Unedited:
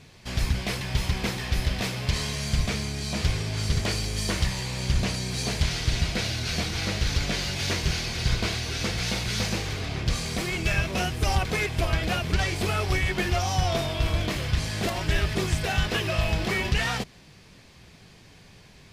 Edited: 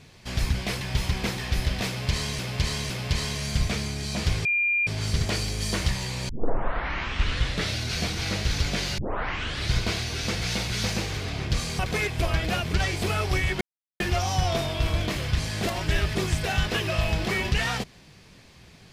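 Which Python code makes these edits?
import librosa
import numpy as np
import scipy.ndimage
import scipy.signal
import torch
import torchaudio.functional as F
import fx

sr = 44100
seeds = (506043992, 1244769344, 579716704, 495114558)

y = fx.edit(x, sr, fx.repeat(start_s=1.88, length_s=0.51, count=3),
    fx.insert_tone(at_s=3.43, length_s=0.42, hz=2400.0, db=-20.5),
    fx.tape_start(start_s=4.85, length_s=1.51),
    fx.tape_start(start_s=7.54, length_s=0.76),
    fx.cut(start_s=10.35, length_s=1.03),
    fx.insert_silence(at_s=13.2, length_s=0.39), tone=tone)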